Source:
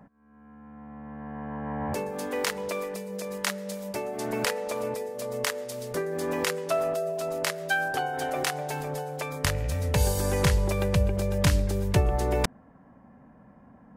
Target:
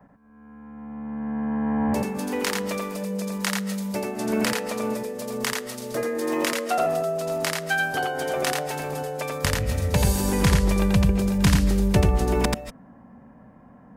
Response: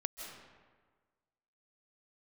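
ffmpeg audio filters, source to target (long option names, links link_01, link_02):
-filter_complex "[0:a]adynamicequalizer=threshold=0.00447:dfrequency=220:dqfactor=2.5:tfrequency=220:tqfactor=2.5:attack=5:release=100:ratio=0.375:range=3.5:mode=boostabove:tftype=bell,asettb=1/sr,asplit=3[link_01][link_02][link_03];[link_01]atrim=end=5.944[link_04];[link_02]atrim=start=5.94:end=6.78,asetpts=PTS-STARTPTS,afade=type=in:duration=0.004:curve=qsin,afade=type=out:start_time=0.836:duration=0.004:curve=qsin,afreqshift=70[link_05];[link_03]atrim=start=6.776[link_06];[link_04][link_05]acrossfade=duration=0.004:curve1=hsin:curve2=qsin[link_07];[link_07][link_06]acrossfade=duration=0.004:curve1=qsin:curve2=hsin,asplit=2[link_08][link_09];[1:a]atrim=start_sample=2205,afade=type=out:start_time=0.21:duration=0.01,atrim=end_sample=9702,adelay=86[link_10];[link_09][link_10]afir=irnorm=-1:irlink=0,volume=-1dB[link_11];[link_08][link_11]amix=inputs=2:normalize=0,volume=1.5dB"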